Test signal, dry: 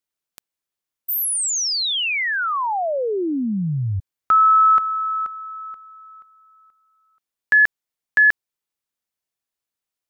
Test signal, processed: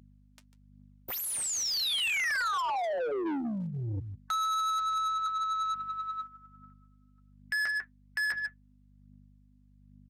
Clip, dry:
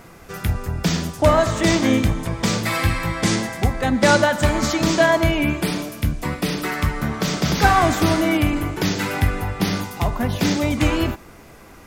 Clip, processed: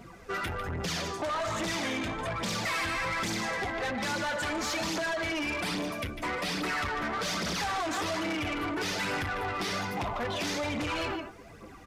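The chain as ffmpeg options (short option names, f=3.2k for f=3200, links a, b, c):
-filter_complex "[0:a]afftdn=nr=16:nf=-36,equalizer=f=12k:t=o:w=0.29:g=-6.5,acompressor=threshold=-18dB:ratio=16:attack=4.4:release=482:knee=6:detection=rms,asplit=2[a][b];[b]aecho=0:1:148:0.188[c];[a][c]amix=inputs=2:normalize=0,flanger=delay=9.4:depth=1:regen=-53:speed=0.22:shape=sinusoidal,aeval=exprs='val(0)+0.00158*(sin(2*PI*50*n/s)+sin(2*PI*2*50*n/s)/2+sin(2*PI*3*50*n/s)/3+sin(2*PI*4*50*n/s)/4+sin(2*PI*5*50*n/s)/5)':c=same,aphaser=in_gain=1:out_gain=1:delay=3.3:decay=0.5:speed=1.2:type=triangular,asoftclip=type=tanh:threshold=-25dB,acrossover=split=120|2400[d][e][f];[e]acompressor=threshold=-35dB:ratio=6:attack=41:release=67:knee=2.83:detection=peak[g];[d][g][f]amix=inputs=3:normalize=0,asplit=2[h][i];[i]highpass=f=720:p=1,volume=25dB,asoftclip=type=tanh:threshold=-18dB[j];[h][j]amix=inputs=2:normalize=0,lowpass=f=6.1k:p=1,volume=-6dB,aresample=32000,aresample=44100,volume=-6dB"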